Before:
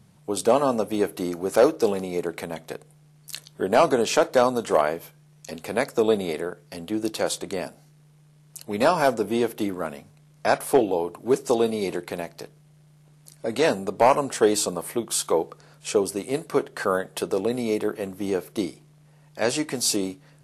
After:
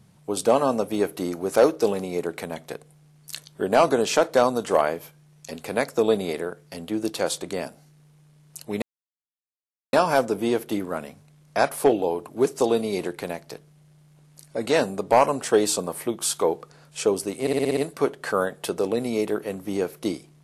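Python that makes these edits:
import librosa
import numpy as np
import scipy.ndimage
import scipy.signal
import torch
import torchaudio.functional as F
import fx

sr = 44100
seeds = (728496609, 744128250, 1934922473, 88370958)

y = fx.edit(x, sr, fx.insert_silence(at_s=8.82, length_s=1.11),
    fx.stutter(start_s=16.3, slice_s=0.06, count=7), tone=tone)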